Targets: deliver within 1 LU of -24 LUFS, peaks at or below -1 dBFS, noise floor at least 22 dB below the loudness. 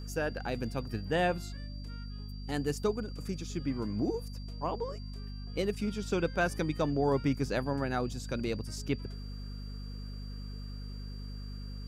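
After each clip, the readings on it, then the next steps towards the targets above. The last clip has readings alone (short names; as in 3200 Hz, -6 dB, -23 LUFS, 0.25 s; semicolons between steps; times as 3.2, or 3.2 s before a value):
hum 50 Hz; harmonics up to 250 Hz; hum level -39 dBFS; steady tone 4700 Hz; tone level -53 dBFS; loudness -35.0 LUFS; peak -16.5 dBFS; loudness target -24.0 LUFS
-> de-hum 50 Hz, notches 5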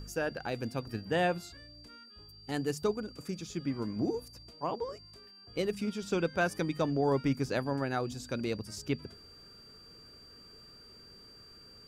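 hum none; steady tone 4700 Hz; tone level -53 dBFS
-> notch 4700 Hz, Q 30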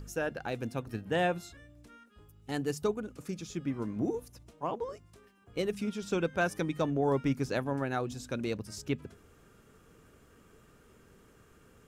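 steady tone none; loudness -34.0 LUFS; peak -17.0 dBFS; loudness target -24.0 LUFS
-> gain +10 dB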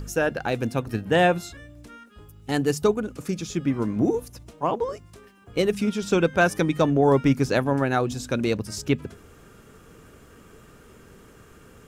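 loudness -24.0 LUFS; peak -7.0 dBFS; noise floor -51 dBFS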